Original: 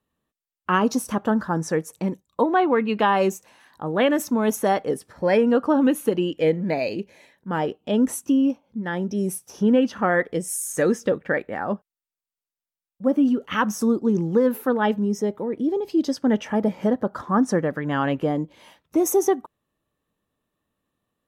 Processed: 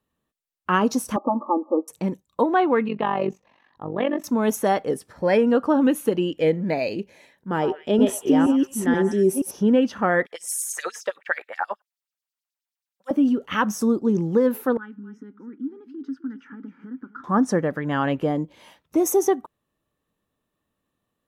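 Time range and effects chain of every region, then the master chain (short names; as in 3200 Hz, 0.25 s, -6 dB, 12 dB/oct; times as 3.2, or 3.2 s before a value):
1.16–1.88 brick-wall FIR band-pass 230–1300 Hz + comb 3.5 ms, depth 97%
2.88–4.24 air absorption 270 m + notch 1500 Hz, Q 6.1 + AM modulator 47 Hz, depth 65%
7.51–9.51 reverse delay 0.477 s, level -1.5 dB + bell 380 Hz +12 dB 0.21 oct + delay with a stepping band-pass 0.105 s, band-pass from 930 Hz, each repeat 1.4 oct, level -8 dB
10.26–13.11 low shelf 270 Hz -7 dB + LFO high-pass sine 9.4 Hz 680–5100 Hz
14.77–17.24 compressor, threshold -22 dBFS + double band-pass 620 Hz, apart 2.4 oct + echo 0.259 s -16 dB
whole clip: dry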